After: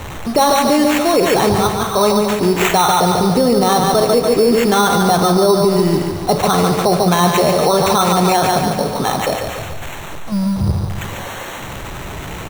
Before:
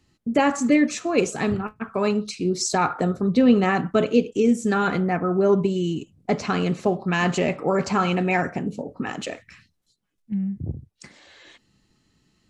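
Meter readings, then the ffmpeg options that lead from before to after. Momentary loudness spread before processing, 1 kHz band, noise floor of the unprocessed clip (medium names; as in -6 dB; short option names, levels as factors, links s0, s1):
11 LU, +12.5 dB, -71 dBFS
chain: -filter_complex "[0:a]aeval=exprs='val(0)+0.5*0.0224*sgn(val(0))':c=same,equalizer=f=250:t=o:w=1:g=-11,equalizer=f=1000:t=o:w=1:g=6,equalizer=f=2000:t=o:w=1:g=-11,equalizer=f=4000:t=o:w=1:g=-9,acrusher=samples=9:mix=1:aa=0.000001,asplit=2[s0][s1];[s1]aecho=0:1:144|288|432|576|720|864|1008:0.501|0.266|0.141|0.0746|0.0395|0.021|0.0111[s2];[s0][s2]amix=inputs=2:normalize=0,alimiter=level_in=7.08:limit=0.891:release=50:level=0:latency=1,volume=0.631"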